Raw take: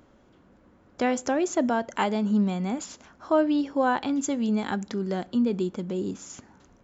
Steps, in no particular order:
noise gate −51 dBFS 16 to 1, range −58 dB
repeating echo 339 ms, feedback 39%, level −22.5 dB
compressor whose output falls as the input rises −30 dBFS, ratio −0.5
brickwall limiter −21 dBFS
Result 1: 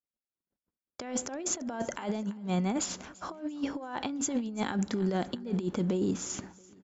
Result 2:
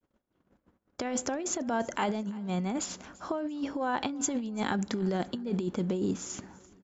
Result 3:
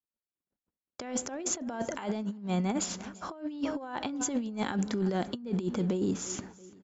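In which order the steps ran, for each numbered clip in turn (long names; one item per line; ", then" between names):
noise gate, then compressor whose output falls as the input rises, then repeating echo, then brickwall limiter
brickwall limiter, then compressor whose output falls as the input rises, then noise gate, then repeating echo
noise gate, then repeating echo, then compressor whose output falls as the input rises, then brickwall limiter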